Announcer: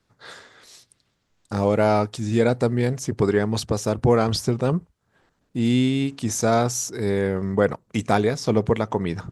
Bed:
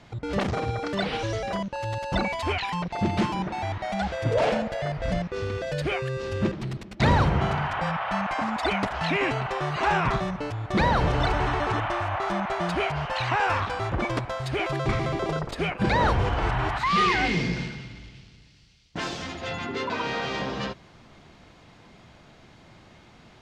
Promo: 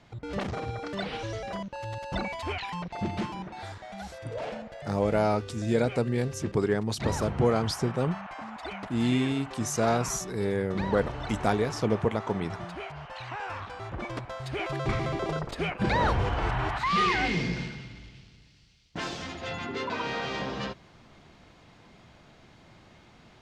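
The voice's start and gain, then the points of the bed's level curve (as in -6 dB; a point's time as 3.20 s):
3.35 s, -6.0 dB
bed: 3.03 s -6 dB
3.81 s -12.5 dB
13.45 s -12.5 dB
14.93 s -3 dB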